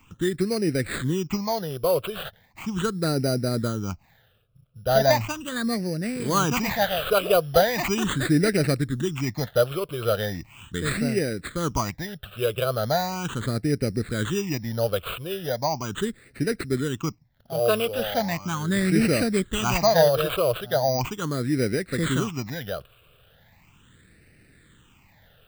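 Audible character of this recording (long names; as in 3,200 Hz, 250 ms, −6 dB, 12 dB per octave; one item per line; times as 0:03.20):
aliases and images of a low sample rate 5,400 Hz, jitter 0%
phaser sweep stages 8, 0.38 Hz, lowest notch 250–1,000 Hz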